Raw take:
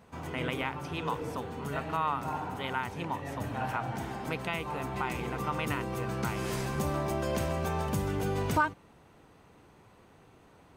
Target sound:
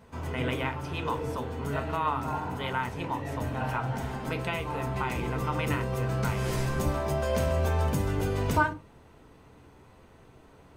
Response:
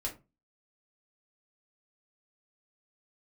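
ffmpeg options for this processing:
-filter_complex "[0:a]asplit=2[link_01][link_02];[1:a]atrim=start_sample=2205,lowshelf=frequency=350:gain=4[link_03];[link_02][link_03]afir=irnorm=-1:irlink=0,volume=-1dB[link_04];[link_01][link_04]amix=inputs=2:normalize=0,volume=-3.5dB"

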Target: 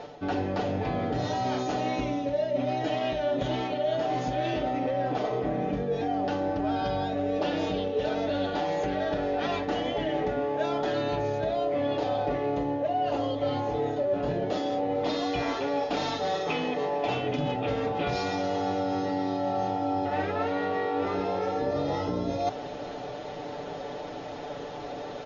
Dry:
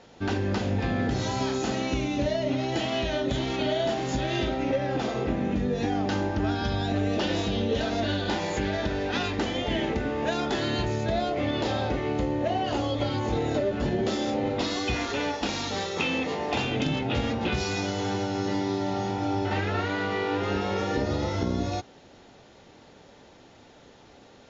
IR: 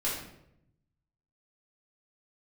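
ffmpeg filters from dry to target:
-filter_complex "[0:a]lowpass=6000,equalizer=frequency=640:width=0.95:gain=10,aecho=1:1:6.6:0.63,areverse,acompressor=threshold=-36dB:ratio=5,areverse,asetrate=42777,aresample=44100,asplit=2[link_01][link_02];[link_02]aecho=0:1:453:0.0944[link_03];[link_01][link_03]amix=inputs=2:normalize=0,volume=8dB"

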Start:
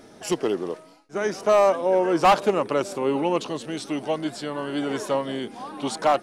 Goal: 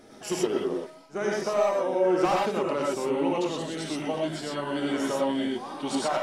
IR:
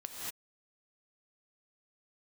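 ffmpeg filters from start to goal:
-filter_complex "[0:a]acompressor=threshold=-21dB:ratio=6[link_01];[1:a]atrim=start_sample=2205,asetrate=83790,aresample=44100[link_02];[link_01][link_02]afir=irnorm=-1:irlink=0,volume=5.5dB"

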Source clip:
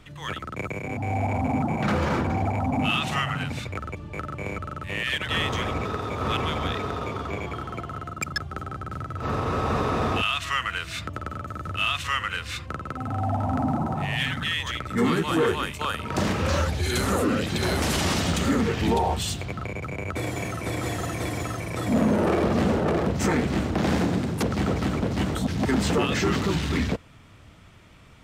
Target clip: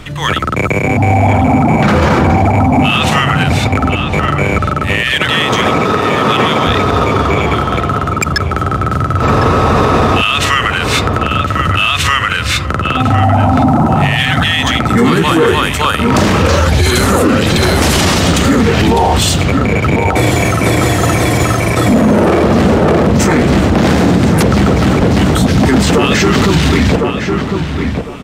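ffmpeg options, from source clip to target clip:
ffmpeg -i in.wav -filter_complex "[0:a]asettb=1/sr,asplit=3[link_01][link_02][link_03];[link_01]atrim=end=5.134[link_04];[link_02]atrim=start=5.13:end=6.67,asetpts=PTS-STARTPTS,afade=type=in:duration=0.004:curve=qsin,afade=type=out:start_time=1.536:duration=0.004:curve=qsin,highpass=frequency=130:width=0.5412,highpass=frequency=130:width=1.3066[link_05];[link_03]atrim=start=6.666[link_06];[link_04][link_05]acrossfade=duration=0.004:curve1=hsin:curve2=qsin[link_07];[link_07][link_06]acrossfade=duration=0.004:curve1=qsin:curve2=hsin,asplit=2[link_08][link_09];[link_09]adelay=1055,lowpass=frequency=2300:poles=1,volume=-10.5dB,asplit=2[link_10][link_11];[link_11]adelay=1055,lowpass=frequency=2300:poles=1,volume=0.24,asplit=2[link_12][link_13];[link_13]adelay=1055,lowpass=frequency=2300:poles=1,volume=0.24[link_14];[link_08][link_10][link_12][link_14]amix=inputs=4:normalize=0,alimiter=level_in=20.5dB:limit=-1dB:release=50:level=0:latency=1,volume=-1dB" out.wav

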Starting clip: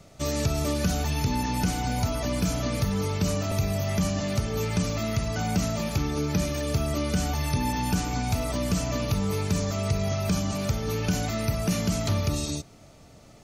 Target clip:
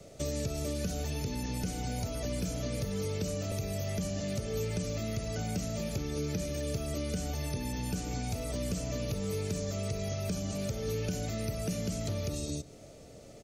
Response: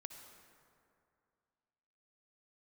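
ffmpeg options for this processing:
-filter_complex "[0:a]acrossover=split=210|1200[link_01][link_02][link_03];[link_01]acompressor=threshold=-32dB:ratio=4[link_04];[link_02]acompressor=threshold=-42dB:ratio=4[link_05];[link_03]acompressor=threshold=-42dB:ratio=4[link_06];[link_04][link_05][link_06]amix=inputs=3:normalize=0,equalizer=frequency=500:width_type=o:width=1:gain=11,equalizer=frequency=1000:width_type=o:width=1:gain=-8,equalizer=frequency=8000:width_type=o:width=1:gain=4,aecho=1:1:146:0.0668,volume=-2.5dB"

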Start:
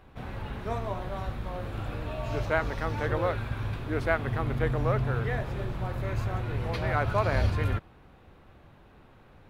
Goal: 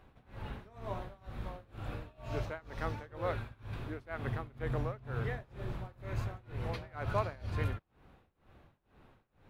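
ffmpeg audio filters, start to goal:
ffmpeg -i in.wav -af "tremolo=f=2.1:d=0.94,volume=-5dB" out.wav

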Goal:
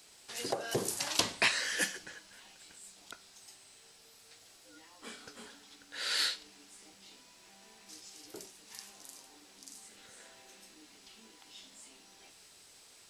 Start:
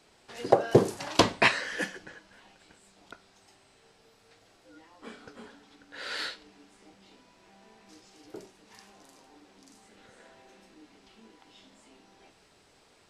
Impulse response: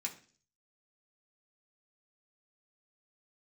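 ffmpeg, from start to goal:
-af "alimiter=limit=-16.5dB:level=0:latency=1:release=204,crystalizer=i=6:c=0,volume=-6dB"

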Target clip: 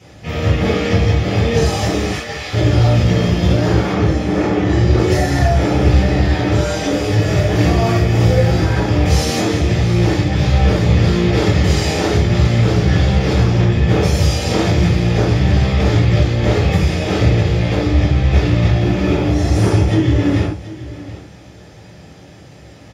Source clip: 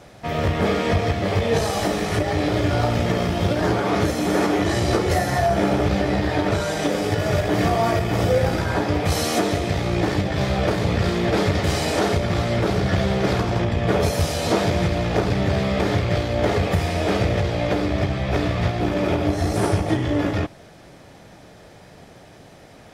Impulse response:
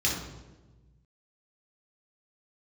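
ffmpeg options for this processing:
-filter_complex "[0:a]asettb=1/sr,asplit=3[link_01][link_02][link_03];[link_01]atrim=end=2.124[link_04];[link_02]atrim=start=2.12:end=2.53,asetpts=PTS-STARTPTS,afade=type=in:duration=0.004:curve=qsin,afade=type=out:start_time=0.406:duration=0.004:curve=qsin,highpass=1100[link_05];[link_03]atrim=start=2.526[link_06];[link_04][link_05]acrossfade=duration=0.004:curve1=hsin:curve2=qsin[link_07];[link_07][link_06]acrossfade=duration=0.004:curve1=qsin:curve2=hsin,asettb=1/sr,asplit=3[link_08][link_09][link_10];[link_08]atrim=end=3.924[link_11];[link_09]atrim=start=3.92:end=4.98,asetpts=PTS-STARTPTS,afade=type=in:duration=0.004:curve=qsin,afade=type=out:start_time=1.056:duration=0.004:curve=qsin,aemphasis=mode=reproduction:type=75kf[link_12];[link_10]atrim=start=4.976[link_13];[link_11][link_12]acrossfade=duration=0.004:curve1=hsin:curve2=qsin[link_14];[link_14][link_13]acrossfade=duration=0.004:curve1=qsin:curve2=hsin,aecho=1:1:733:0.15[link_15];[1:a]atrim=start_sample=2205,atrim=end_sample=3969[link_16];[link_15][link_16]afir=irnorm=-1:irlink=0,volume=-6dB"

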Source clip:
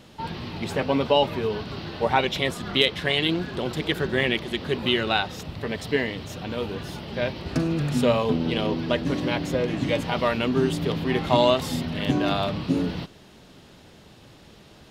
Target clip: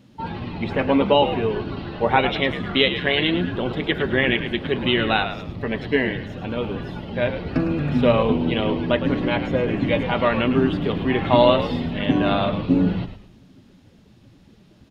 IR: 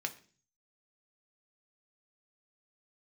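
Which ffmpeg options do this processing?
-filter_complex "[0:a]acrossover=split=4200[link_01][link_02];[link_02]acompressor=threshold=-53dB:ratio=4:attack=1:release=60[link_03];[link_01][link_03]amix=inputs=2:normalize=0,asplit=2[link_04][link_05];[1:a]atrim=start_sample=2205,lowshelf=frequency=140:gain=10.5[link_06];[link_05][link_06]afir=irnorm=-1:irlink=0,volume=-6dB[link_07];[link_04][link_07]amix=inputs=2:normalize=0,afftdn=noise_reduction=13:noise_floor=-37,asplit=5[link_08][link_09][link_10][link_11][link_12];[link_09]adelay=107,afreqshift=-76,volume=-10dB[link_13];[link_10]adelay=214,afreqshift=-152,volume=-19.1dB[link_14];[link_11]adelay=321,afreqshift=-228,volume=-28.2dB[link_15];[link_12]adelay=428,afreqshift=-304,volume=-37.4dB[link_16];[link_08][link_13][link_14][link_15][link_16]amix=inputs=5:normalize=0"

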